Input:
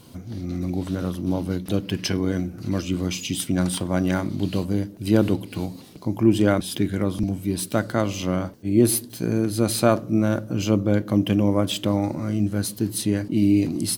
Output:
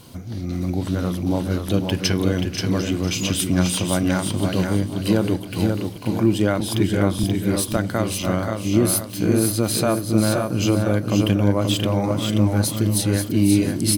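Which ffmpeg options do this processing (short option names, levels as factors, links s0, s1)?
-filter_complex "[0:a]equalizer=f=270:w=0.86:g=-3.5,asplit=2[s0][s1];[s1]aecho=0:1:494|988|1482|1976:0.251|0.1|0.0402|0.0161[s2];[s0][s2]amix=inputs=2:normalize=0,alimiter=limit=0.251:level=0:latency=1:release=344,asplit=2[s3][s4];[s4]aecho=0:1:531:0.562[s5];[s3][s5]amix=inputs=2:normalize=0,volume=1.68"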